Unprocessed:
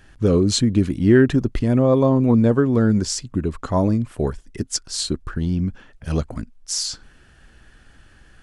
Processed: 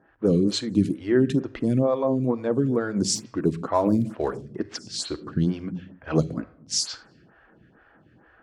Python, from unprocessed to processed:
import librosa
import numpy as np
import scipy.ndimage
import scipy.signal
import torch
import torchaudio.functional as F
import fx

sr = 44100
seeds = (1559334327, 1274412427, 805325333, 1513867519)

y = fx.dead_time(x, sr, dead_ms=0.051, at=(3.15, 4.74))
y = scipy.signal.sosfilt(scipy.signal.butter(2, 130.0, 'highpass', fs=sr, output='sos'), y)
y = fx.env_lowpass(y, sr, base_hz=1300.0, full_db=-17.5)
y = fx.rider(y, sr, range_db=4, speed_s=0.5)
y = fx.room_shoebox(y, sr, seeds[0], volume_m3=2000.0, walls='furnished', distance_m=0.64)
y = fx.stagger_phaser(y, sr, hz=2.2)